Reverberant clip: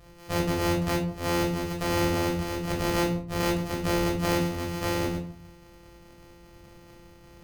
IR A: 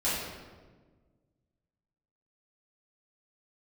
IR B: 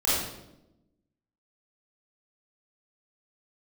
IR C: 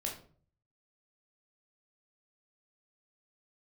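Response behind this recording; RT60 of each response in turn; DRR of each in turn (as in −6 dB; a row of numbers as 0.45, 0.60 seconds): C; 1.4, 0.90, 0.45 seconds; −12.0, −9.5, −1.0 decibels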